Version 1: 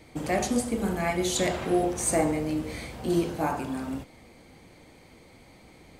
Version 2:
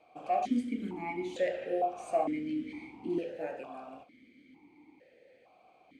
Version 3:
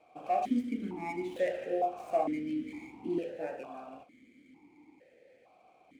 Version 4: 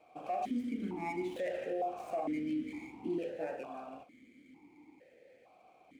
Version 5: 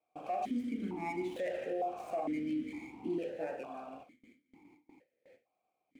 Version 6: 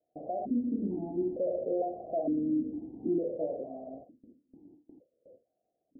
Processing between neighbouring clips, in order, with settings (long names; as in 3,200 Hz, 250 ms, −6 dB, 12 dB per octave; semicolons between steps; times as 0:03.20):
formant filter that steps through the vowels 2.2 Hz; level +3 dB
running median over 9 samples
brickwall limiter −28.5 dBFS, peak gain reduction 9.5 dB
noise gate with hold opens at −50 dBFS
Chebyshev low-pass filter 660 Hz, order 5; level +6.5 dB